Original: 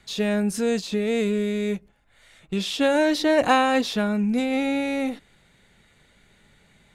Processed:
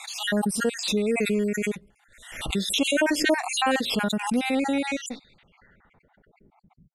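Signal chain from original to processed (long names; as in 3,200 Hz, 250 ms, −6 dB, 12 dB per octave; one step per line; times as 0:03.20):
time-frequency cells dropped at random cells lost 49%
low-pass filter sweep 11,000 Hz → 160 Hz, 0:04.75–0:06.88
background raised ahead of every attack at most 74 dB per second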